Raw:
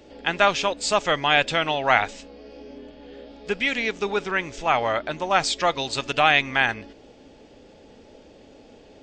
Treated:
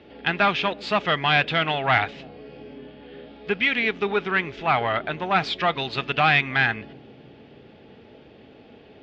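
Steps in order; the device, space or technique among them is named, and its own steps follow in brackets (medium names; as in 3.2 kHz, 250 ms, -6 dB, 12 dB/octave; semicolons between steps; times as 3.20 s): analogue delay pedal into a guitar amplifier (bucket-brigade echo 323 ms, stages 1024, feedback 72%, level -17.5 dB; valve stage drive 13 dB, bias 0.35; cabinet simulation 80–3500 Hz, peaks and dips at 290 Hz -5 dB, 550 Hz -8 dB, 920 Hz -4 dB); trim +4.5 dB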